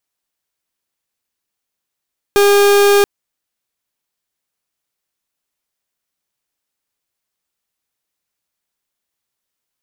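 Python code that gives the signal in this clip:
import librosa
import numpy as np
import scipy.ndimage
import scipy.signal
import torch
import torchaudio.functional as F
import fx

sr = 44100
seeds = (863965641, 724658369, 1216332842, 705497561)

y = fx.pulse(sr, length_s=0.68, hz=405.0, level_db=-10.0, duty_pct=41)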